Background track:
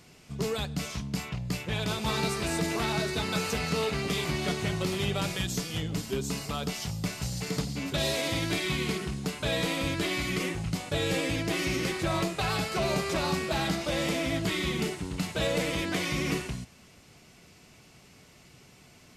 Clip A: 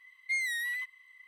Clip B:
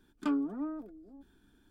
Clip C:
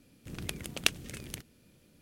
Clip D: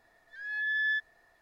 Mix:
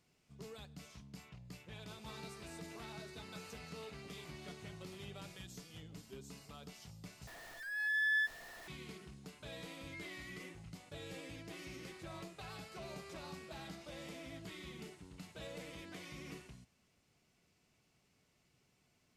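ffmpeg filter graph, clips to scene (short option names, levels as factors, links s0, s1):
-filter_complex "[0:a]volume=0.1[s0];[4:a]aeval=exprs='val(0)+0.5*0.00631*sgn(val(0))':c=same[s1];[1:a]lowpass=f=1100:p=1[s2];[s0]asplit=2[s3][s4];[s3]atrim=end=7.274[s5];[s1]atrim=end=1.41,asetpts=PTS-STARTPTS,volume=0.631[s6];[s4]atrim=start=8.676[s7];[s2]atrim=end=1.27,asetpts=PTS-STARTPTS,volume=0.188,afade=t=in:d=0.004:c=hsin,afade=t=out:st=1.266:d=0.004:c=hsin,adelay=9630[s8];[s5][s6]acrossfade=d=0.004:c1=hsin:c2=hsin[s9];[s9][s7]acrossfade=d=0.004:c1=hsin:c2=hsin[s10];[s10][s8]amix=inputs=2:normalize=0"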